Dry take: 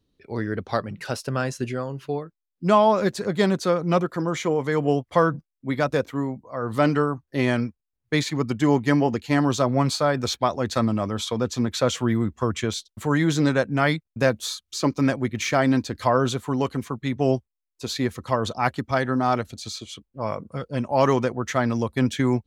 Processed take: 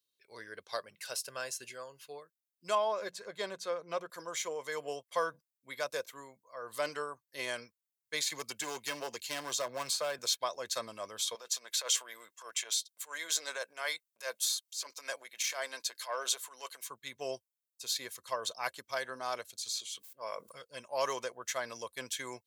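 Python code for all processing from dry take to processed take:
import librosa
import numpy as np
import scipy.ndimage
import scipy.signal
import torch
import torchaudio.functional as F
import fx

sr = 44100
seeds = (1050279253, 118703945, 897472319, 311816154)

y = fx.chain(x, sr, fx.lowpass(hz=2200.0, slope=6),
    fx.hum_notches(base_hz=60, count=3), at=(2.75, 4.1))
y = fx.chain(y, sr, fx.clip_hard(threshold_db=-16.0),
    fx.band_squash(depth_pct=70), at=(8.3, 10.19))
y = fx.chain(y, sr, fx.transient(attack_db=-12, sustain_db=4),
    fx.highpass(hz=530.0, slope=12), at=(11.35, 16.87))
y = fx.chain(y, sr, fx.low_shelf(hz=120.0, db=-10.5),
    fx.sustainer(db_per_s=44.0), at=(19.7, 20.52))
y = np.diff(y, prepend=0.0)
y = y + 0.4 * np.pad(y, (int(1.9 * sr / 1000.0), 0))[:len(y)]
y = fx.dynamic_eq(y, sr, hz=580.0, q=0.83, threshold_db=-53.0, ratio=4.0, max_db=7)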